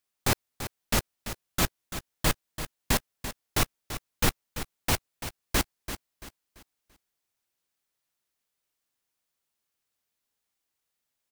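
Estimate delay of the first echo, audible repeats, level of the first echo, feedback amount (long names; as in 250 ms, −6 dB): 338 ms, 3, −11.0 dB, 35%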